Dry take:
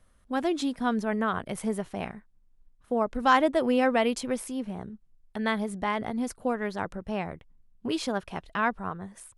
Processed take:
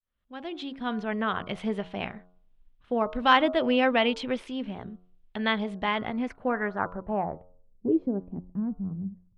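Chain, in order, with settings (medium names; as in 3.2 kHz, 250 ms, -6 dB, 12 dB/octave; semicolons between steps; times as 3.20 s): fade-in on the opening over 1.43 s; de-hum 90.29 Hz, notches 16; low-pass sweep 3.2 kHz -> 200 Hz, 5.98–8.60 s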